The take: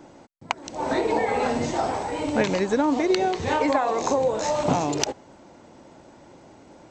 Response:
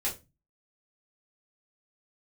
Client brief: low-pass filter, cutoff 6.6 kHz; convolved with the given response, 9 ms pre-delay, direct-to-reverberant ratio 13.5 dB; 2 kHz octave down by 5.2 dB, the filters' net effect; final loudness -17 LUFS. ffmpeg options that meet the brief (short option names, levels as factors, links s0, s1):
-filter_complex "[0:a]lowpass=6600,equalizer=f=2000:t=o:g=-6.5,asplit=2[s0][s1];[1:a]atrim=start_sample=2205,adelay=9[s2];[s1][s2]afir=irnorm=-1:irlink=0,volume=0.119[s3];[s0][s3]amix=inputs=2:normalize=0,volume=2.37"